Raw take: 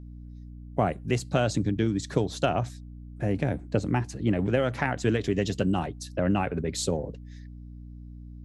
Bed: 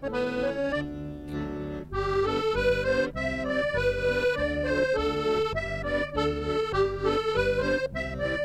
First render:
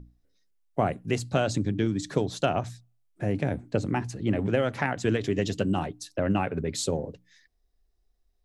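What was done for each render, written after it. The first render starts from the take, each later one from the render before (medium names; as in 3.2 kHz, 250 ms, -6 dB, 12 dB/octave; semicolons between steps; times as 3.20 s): hum notches 60/120/180/240/300 Hz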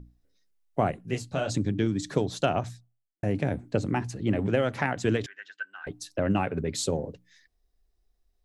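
0.91–1.50 s: detune thickener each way 34 cents; 2.64–3.23 s: studio fade out; 5.26–5.87 s: ladder band-pass 1.6 kHz, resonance 90%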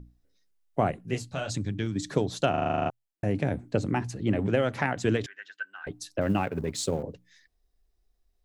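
1.31–1.96 s: peaking EQ 350 Hz -7 dB 2.3 oct; 2.50 s: stutter in place 0.04 s, 10 plays; 6.21–7.03 s: companding laws mixed up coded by A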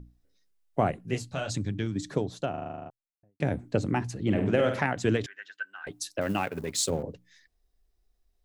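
1.58–3.40 s: studio fade out; 4.22–4.80 s: flutter echo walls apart 8.5 m, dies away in 0.45 s; 5.86–6.90 s: tilt EQ +2 dB/octave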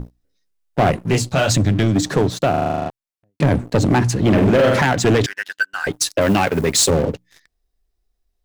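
in parallel at +1 dB: peak limiter -21 dBFS, peak gain reduction 10.5 dB; on the sum: waveshaping leveller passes 3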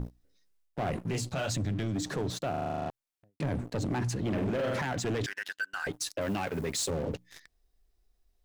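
reverse; compression 12:1, threshold -23 dBFS, peak gain reduction 12 dB; reverse; peak limiter -26 dBFS, peak gain reduction 11.5 dB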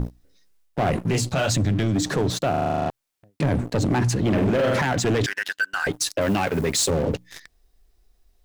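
trim +10 dB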